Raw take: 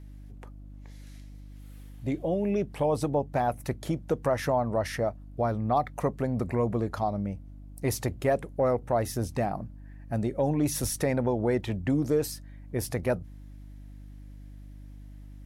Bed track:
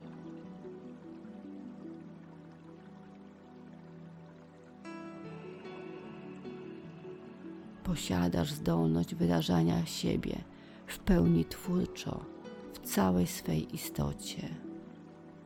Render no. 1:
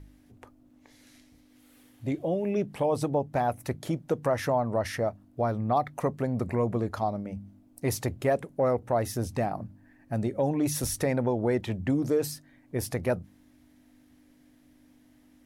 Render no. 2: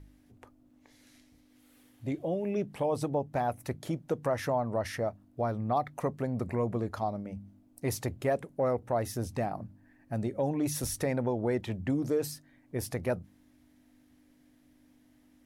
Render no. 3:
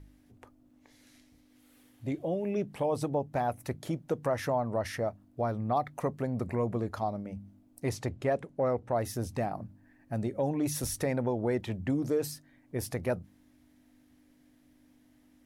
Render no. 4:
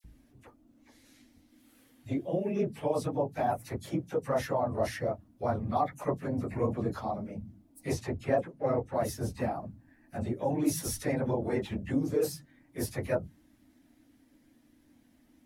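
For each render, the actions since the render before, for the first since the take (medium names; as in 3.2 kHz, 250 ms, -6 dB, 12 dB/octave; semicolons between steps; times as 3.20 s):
de-hum 50 Hz, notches 4
trim -3.5 dB
7.89–8.95 s: distance through air 51 m
phase randomisation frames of 50 ms; phase dispersion lows, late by 41 ms, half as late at 2 kHz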